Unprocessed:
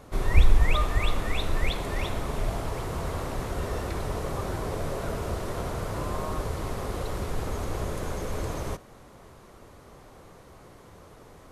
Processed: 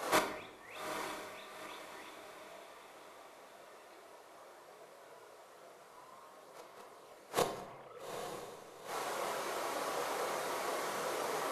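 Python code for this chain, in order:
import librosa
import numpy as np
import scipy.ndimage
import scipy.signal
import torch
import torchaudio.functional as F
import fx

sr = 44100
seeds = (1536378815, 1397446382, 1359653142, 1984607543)

y = fx.sine_speech(x, sr, at=(7.62, 8.26))
y = scipy.signal.sosfilt(scipy.signal.butter(2, 540.0, 'highpass', fs=sr, output='sos'), y)
y = fx.gate_flip(y, sr, shuts_db=-29.0, range_db=-36)
y = fx.chorus_voices(y, sr, voices=4, hz=0.55, base_ms=28, depth_ms=3.0, mix_pct=55)
y = fx.echo_diffused(y, sr, ms=849, feedback_pct=45, wet_db=-7.5)
y = fx.room_shoebox(y, sr, seeds[0], volume_m3=270.0, walls='mixed', distance_m=0.65)
y = F.gain(torch.from_numpy(y), 17.5).numpy()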